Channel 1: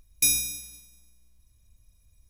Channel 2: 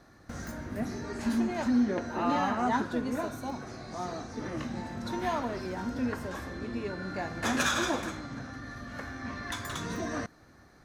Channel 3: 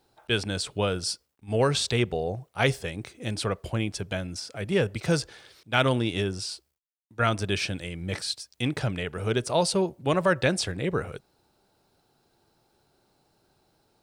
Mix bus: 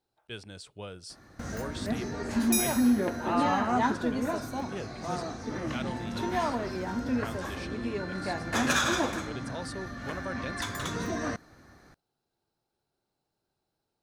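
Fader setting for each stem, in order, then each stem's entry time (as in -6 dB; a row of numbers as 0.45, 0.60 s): -6.5, +2.0, -15.5 dB; 2.30, 1.10, 0.00 s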